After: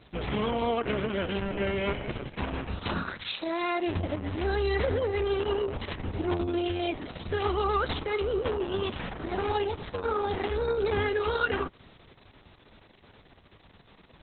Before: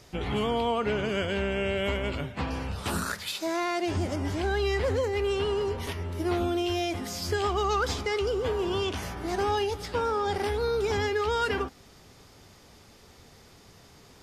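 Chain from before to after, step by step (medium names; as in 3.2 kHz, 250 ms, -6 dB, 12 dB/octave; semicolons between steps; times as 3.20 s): Opus 6 kbps 48 kHz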